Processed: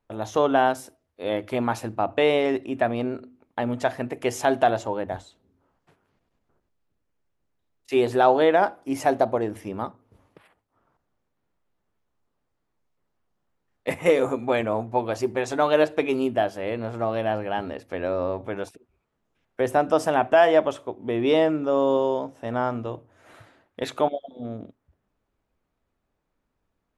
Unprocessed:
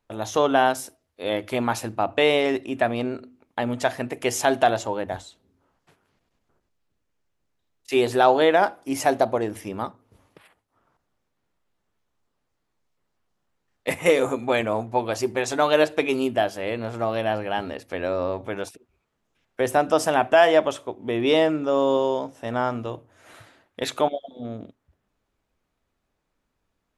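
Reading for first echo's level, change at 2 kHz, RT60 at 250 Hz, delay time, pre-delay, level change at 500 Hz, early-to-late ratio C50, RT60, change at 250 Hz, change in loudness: none, -3.0 dB, none, none, none, -0.5 dB, none, none, 0.0 dB, -1.0 dB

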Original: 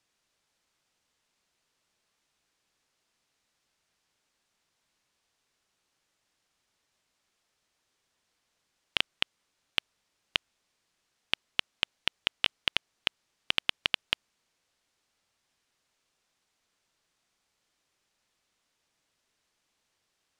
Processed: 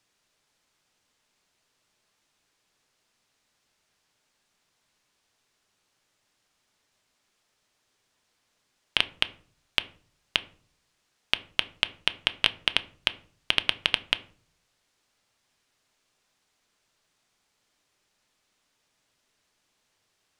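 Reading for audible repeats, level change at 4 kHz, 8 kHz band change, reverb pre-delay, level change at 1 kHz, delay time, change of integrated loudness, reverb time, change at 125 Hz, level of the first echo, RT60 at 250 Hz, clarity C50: none, +4.0 dB, +4.0 dB, 5 ms, +4.5 dB, none, +4.0 dB, 0.50 s, +5.0 dB, none, 0.70 s, 19.0 dB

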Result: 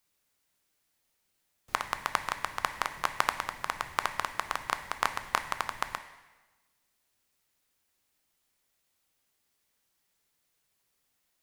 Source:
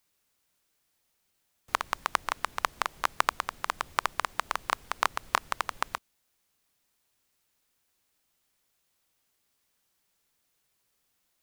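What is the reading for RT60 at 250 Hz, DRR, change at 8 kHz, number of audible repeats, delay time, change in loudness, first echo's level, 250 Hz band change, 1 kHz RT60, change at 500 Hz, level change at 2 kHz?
1.2 s, 6.5 dB, -1.5 dB, none, none, -1.5 dB, none, +0.5 dB, 1.2 s, -1.0 dB, -1.0 dB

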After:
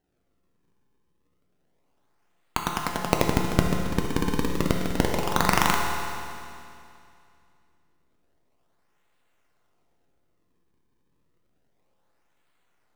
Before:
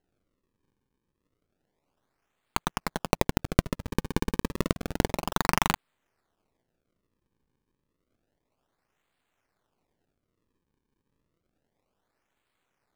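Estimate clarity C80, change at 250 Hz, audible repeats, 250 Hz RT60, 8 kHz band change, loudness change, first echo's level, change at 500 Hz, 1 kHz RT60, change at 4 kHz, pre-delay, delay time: 3.0 dB, +4.0 dB, none, 2.5 s, +4.0 dB, +3.5 dB, none, +4.5 dB, 2.5 s, +4.0 dB, 6 ms, none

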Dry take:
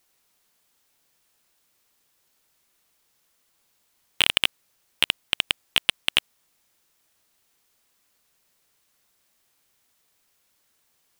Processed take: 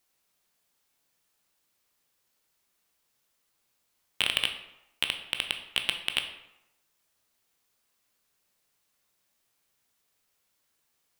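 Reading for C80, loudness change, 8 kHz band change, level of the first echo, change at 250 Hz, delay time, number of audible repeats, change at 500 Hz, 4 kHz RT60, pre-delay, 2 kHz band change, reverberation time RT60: 11.5 dB, -6.0 dB, -6.5 dB, none, -6.0 dB, none, none, -5.5 dB, 0.60 s, 14 ms, -6.0 dB, 0.90 s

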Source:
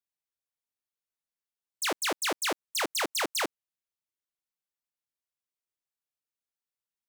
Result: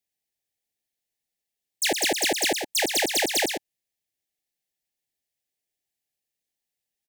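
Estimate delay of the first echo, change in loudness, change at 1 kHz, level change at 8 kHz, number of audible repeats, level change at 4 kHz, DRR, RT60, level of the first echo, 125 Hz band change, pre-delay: 0.116 s, +7.0 dB, +2.5 dB, +8.0 dB, 1, +7.5 dB, none, none, -6.5 dB, +7.5 dB, none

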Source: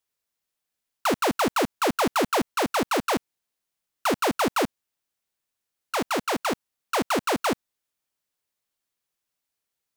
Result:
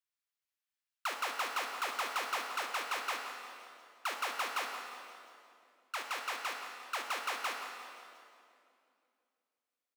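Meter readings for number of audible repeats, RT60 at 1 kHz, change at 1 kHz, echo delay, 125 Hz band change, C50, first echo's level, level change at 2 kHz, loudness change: 2, 2.4 s, -11.0 dB, 0.174 s, under -35 dB, 3.5 dB, -13.5 dB, -6.5 dB, -11.5 dB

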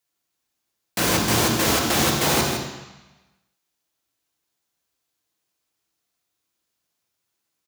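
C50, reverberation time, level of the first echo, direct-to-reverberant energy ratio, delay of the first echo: 2.5 dB, 1.0 s, -8.0 dB, 0.0 dB, 0.16 s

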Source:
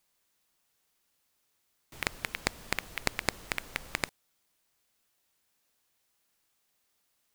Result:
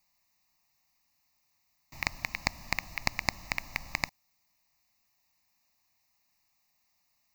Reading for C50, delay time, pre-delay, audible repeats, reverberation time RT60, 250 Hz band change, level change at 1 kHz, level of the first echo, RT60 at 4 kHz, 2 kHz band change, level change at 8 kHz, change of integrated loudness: none, none, none, none, none, -1.0 dB, +2.0 dB, none, none, +2.0 dB, -1.5 dB, +1.5 dB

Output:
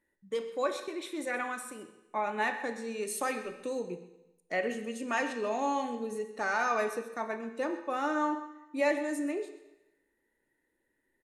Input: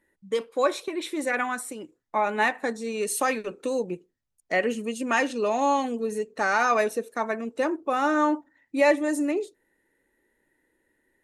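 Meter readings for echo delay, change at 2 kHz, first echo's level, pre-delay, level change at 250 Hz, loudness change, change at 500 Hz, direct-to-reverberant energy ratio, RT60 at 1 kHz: 0.129 s, -7.0 dB, -16.5 dB, 18 ms, -7.5 dB, -7.0 dB, -7.5 dB, 7.5 dB, 0.95 s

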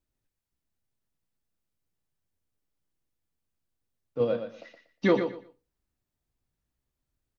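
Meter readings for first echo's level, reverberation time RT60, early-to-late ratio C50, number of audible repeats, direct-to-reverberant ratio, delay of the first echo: -8.0 dB, none, none, 2, none, 0.119 s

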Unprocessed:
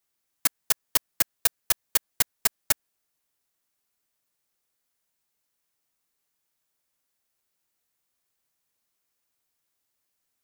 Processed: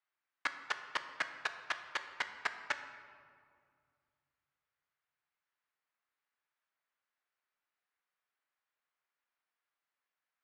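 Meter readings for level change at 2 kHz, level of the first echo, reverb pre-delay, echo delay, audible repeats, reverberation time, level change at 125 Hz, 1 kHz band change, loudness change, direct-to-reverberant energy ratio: -1.5 dB, none, 7 ms, none, none, 2.1 s, under -20 dB, -2.0 dB, -14.5 dB, 7.5 dB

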